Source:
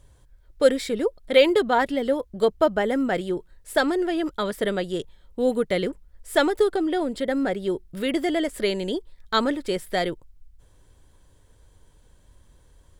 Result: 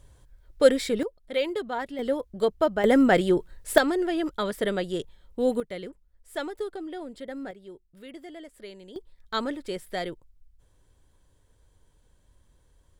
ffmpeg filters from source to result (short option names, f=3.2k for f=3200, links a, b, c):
-af "asetnsamples=n=441:p=0,asendcmd='1.03 volume volume -10.5dB;1.99 volume volume -3.5dB;2.84 volume volume 5dB;3.78 volume volume -2dB;5.6 volume volume -12.5dB;7.51 volume volume -19dB;8.96 volume volume -7dB',volume=0dB"